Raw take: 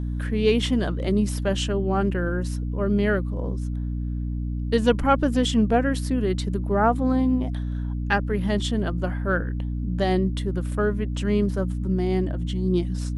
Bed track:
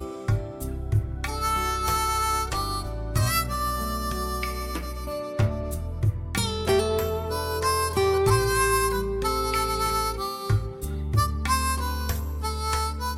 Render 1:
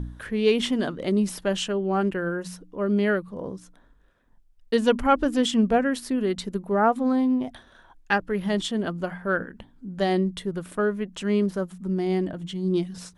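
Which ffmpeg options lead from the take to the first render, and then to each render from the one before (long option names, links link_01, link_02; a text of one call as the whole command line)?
ffmpeg -i in.wav -af "bandreject=frequency=60:width_type=h:width=4,bandreject=frequency=120:width_type=h:width=4,bandreject=frequency=180:width_type=h:width=4,bandreject=frequency=240:width_type=h:width=4,bandreject=frequency=300:width_type=h:width=4" out.wav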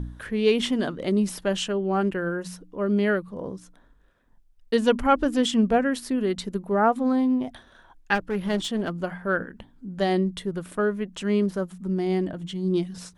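ffmpeg -i in.wav -filter_complex "[0:a]asplit=3[link_01][link_02][link_03];[link_01]afade=type=out:start_time=8.14:duration=0.02[link_04];[link_02]aeval=exprs='clip(val(0),-1,0.0531)':channel_layout=same,afade=type=in:start_time=8.14:duration=0.02,afade=type=out:start_time=8.94:duration=0.02[link_05];[link_03]afade=type=in:start_time=8.94:duration=0.02[link_06];[link_04][link_05][link_06]amix=inputs=3:normalize=0" out.wav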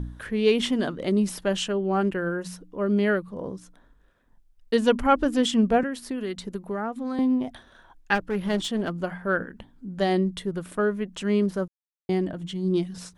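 ffmpeg -i in.wav -filter_complex "[0:a]asettb=1/sr,asplit=3[link_01][link_02][link_03];[link_01]atrim=end=5.834[link_04];[link_02]atrim=start=5.83:end=7.19,asetpts=PTS-STARTPTS,afade=type=in:duration=0.004:curve=qsin,afade=type=out:start_time=1.356:duration=0.004:curve=qsin,acrossover=split=390|1300[link_05][link_06][link_07];[link_05]acompressor=threshold=-32dB:ratio=4[link_08];[link_06]acompressor=threshold=-36dB:ratio=4[link_09];[link_07]acompressor=threshold=-38dB:ratio=4[link_10];[link_08][link_09][link_10]amix=inputs=3:normalize=0[link_11];[link_03]atrim=start=7.186[link_12];[link_04][link_11]acrossfade=duration=0.004:curve1=hsin:curve2=qsin[link_13];[link_13][link_12]acrossfade=duration=0.004:curve1=qsin:curve2=hsin,asplit=3[link_14][link_15][link_16];[link_14]atrim=end=11.68,asetpts=PTS-STARTPTS,afade=type=out:start_time=11.676:duration=0.004:curve=hsin[link_17];[link_15]atrim=start=11.68:end=12.09,asetpts=PTS-STARTPTS,volume=0[link_18];[link_16]atrim=start=12.09,asetpts=PTS-STARTPTS,afade=type=in:duration=0.004:curve=hsin[link_19];[link_17][link_18][link_19]concat=n=3:v=0:a=1" out.wav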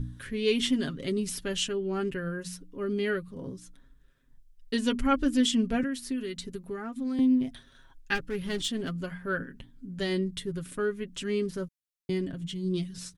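ffmpeg -i in.wav -af "equalizer=frequency=760:width_type=o:width=1.8:gain=-15,aecho=1:1:7.4:0.57" out.wav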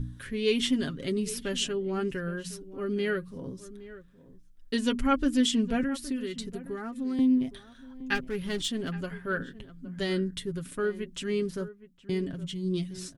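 ffmpeg -i in.wav -filter_complex "[0:a]asplit=2[link_01][link_02];[link_02]adelay=816.3,volume=-16dB,highshelf=frequency=4000:gain=-18.4[link_03];[link_01][link_03]amix=inputs=2:normalize=0" out.wav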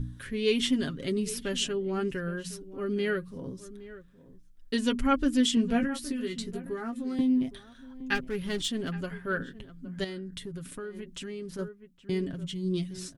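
ffmpeg -i in.wav -filter_complex "[0:a]asettb=1/sr,asplit=3[link_01][link_02][link_03];[link_01]atrim=end=5.554[link_04];[link_02]atrim=start=5.55:end=7.43,asetpts=PTS-STARTPTS,afade=type=in:duration=0.004:curve=qsin,afade=type=out:start_time=1.876:duration=0.004:curve=qsin,asplit=2[link_05][link_06];[link_06]adelay=17,volume=-6dB[link_07];[link_05][link_07]amix=inputs=2:normalize=0,atrim=end_sample=82908[link_08];[link_03]atrim=start=7.426[link_09];[link_04][link_08]acrossfade=duration=0.004:curve1=hsin:curve2=qsin[link_10];[link_10][link_09]acrossfade=duration=0.004:curve1=qsin:curve2=hsin,asettb=1/sr,asplit=3[link_11][link_12][link_13];[link_11]atrim=end=10.044[link_14];[link_12]atrim=start=10.04:end=11.59,asetpts=PTS-STARTPTS,afade=type=in:duration=0.004:curve=qsin,afade=type=out:start_time=1.546:duration=0.004:curve=qsin,acompressor=threshold=-35dB:ratio=6:attack=3.2:release=140:knee=1:detection=peak[link_15];[link_13]atrim=start=11.586[link_16];[link_14][link_15]acrossfade=duration=0.004:curve1=hsin:curve2=qsin[link_17];[link_17][link_16]acrossfade=duration=0.004:curve1=qsin:curve2=hsin" out.wav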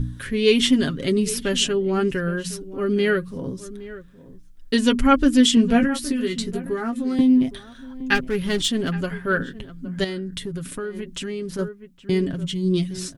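ffmpeg -i in.wav -af "volume=9dB" out.wav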